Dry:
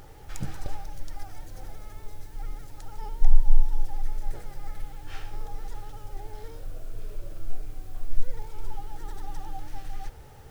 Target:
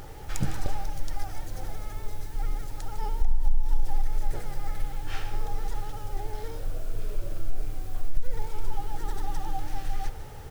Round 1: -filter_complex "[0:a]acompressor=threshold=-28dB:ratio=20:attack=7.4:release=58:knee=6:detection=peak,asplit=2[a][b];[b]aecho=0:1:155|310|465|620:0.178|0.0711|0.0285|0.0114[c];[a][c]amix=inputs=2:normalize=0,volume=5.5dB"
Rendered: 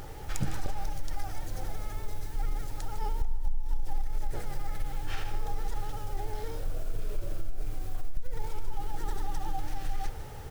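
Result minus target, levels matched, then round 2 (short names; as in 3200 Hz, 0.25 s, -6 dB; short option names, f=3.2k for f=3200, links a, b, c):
compressor: peak gain reduction +7.5 dB
-filter_complex "[0:a]acompressor=threshold=-20dB:ratio=20:attack=7.4:release=58:knee=6:detection=peak,asplit=2[a][b];[b]aecho=0:1:155|310|465|620:0.178|0.0711|0.0285|0.0114[c];[a][c]amix=inputs=2:normalize=0,volume=5.5dB"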